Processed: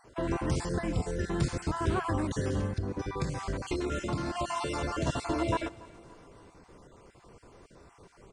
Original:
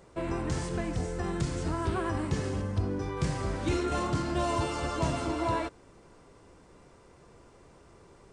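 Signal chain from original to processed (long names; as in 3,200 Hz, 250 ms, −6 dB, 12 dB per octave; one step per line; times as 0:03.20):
time-frequency cells dropped at random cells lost 29%
0:02.65–0:05.07: downward compressor, threshold −30 dBFS, peak gain reduction 7 dB
repeating echo 285 ms, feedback 47%, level −21.5 dB
level +2 dB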